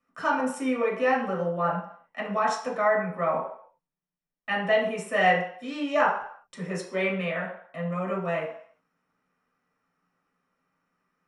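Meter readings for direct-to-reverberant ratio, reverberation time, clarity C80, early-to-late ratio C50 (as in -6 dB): -4.5 dB, 0.60 s, 9.0 dB, 5.5 dB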